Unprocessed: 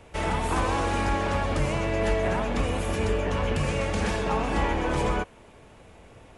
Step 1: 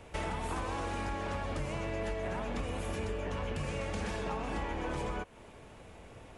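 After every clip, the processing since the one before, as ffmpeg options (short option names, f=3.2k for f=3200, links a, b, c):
-af "acompressor=threshold=-32dB:ratio=5,volume=-1.5dB"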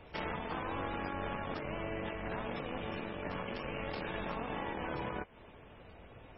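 -af "aeval=exprs='0.0668*(cos(1*acos(clip(val(0)/0.0668,-1,1)))-cos(1*PI/2))+0.00841*(cos(3*acos(clip(val(0)/0.0668,-1,1)))-cos(3*PI/2))+0.00668*(cos(4*acos(clip(val(0)/0.0668,-1,1)))-cos(4*PI/2))':c=same,afftfilt=real='re*lt(hypot(re,im),0.0708)':imag='im*lt(hypot(re,im),0.0708)':win_size=1024:overlap=0.75,volume=2dB" -ar 24000 -c:a libmp3lame -b:a 16k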